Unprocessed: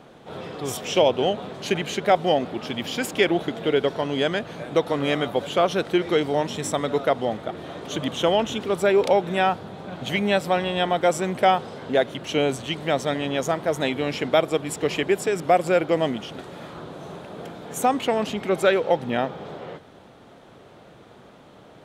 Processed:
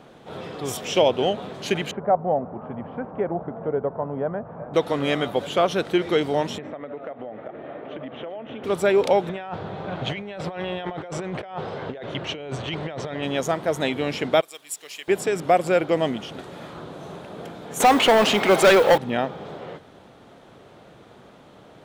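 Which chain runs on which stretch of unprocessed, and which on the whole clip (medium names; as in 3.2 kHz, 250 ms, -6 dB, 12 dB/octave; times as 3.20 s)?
1.91–4.74 s: low-pass 1.1 kHz 24 dB/octave + peaking EQ 330 Hz -9 dB 0.66 oct + tape noise reduction on one side only encoder only
6.58–8.64 s: cabinet simulation 160–2200 Hz, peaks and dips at 180 Hz -8 dB, 370 Hz -3 dB, 600 Hz +4 dB, 1 kHz -6 dB, 1.5 kHz -3 dB + compression 16:1, threshold -30 dBFS + delay 388 ms -15 dB
9.29–13.23 s: Bessel low-pass 2.9 kHz + compressor with a negative ratio -30 dBFS + peaking EQ 240 Hz -8 dB 0.56 oct
14.41–15.08 s: differentiator + companded quantiser 6-bit + tape noise reduction on one side only decoder only
17.80–18.98 s: overdrive pedal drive 22 dB, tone 5 kHz, clips at -7 dBFS + modulation noise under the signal 28 dB
whole clip: none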